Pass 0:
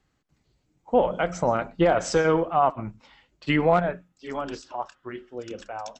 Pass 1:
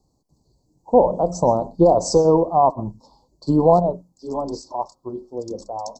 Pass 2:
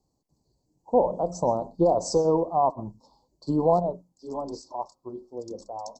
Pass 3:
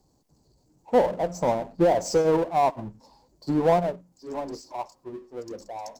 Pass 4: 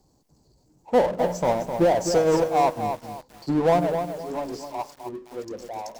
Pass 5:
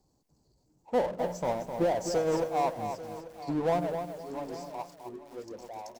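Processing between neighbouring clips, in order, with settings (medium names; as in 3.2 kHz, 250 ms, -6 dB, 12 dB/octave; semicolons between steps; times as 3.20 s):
Chebyshev band-stop 1–4.4 kHz, order 4; trim +6.5 dB
bass shelf 140 Hz -4 dB; trim -6.5 dB
power-law waveshaper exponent 0.7; upward expansion 1.5:1, over -34 dBFS
in parallel at -10 dB: saturation -27.5 dBFS, distortion -6 dB; on the sum: bit-crushed delay 257 ms, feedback 35%, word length 7-bit, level -7 dB
delay 840 ms -15.5 dB; trim -8 dB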